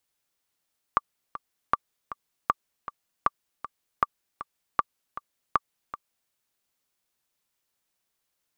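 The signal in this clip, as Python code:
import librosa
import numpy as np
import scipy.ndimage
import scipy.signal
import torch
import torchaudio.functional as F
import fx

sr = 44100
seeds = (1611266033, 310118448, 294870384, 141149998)

y = fx.click_track(sr, bpm=157, beats=2, bars=7, hz=1170.0, accent_db=14.0, level_db=-7.0)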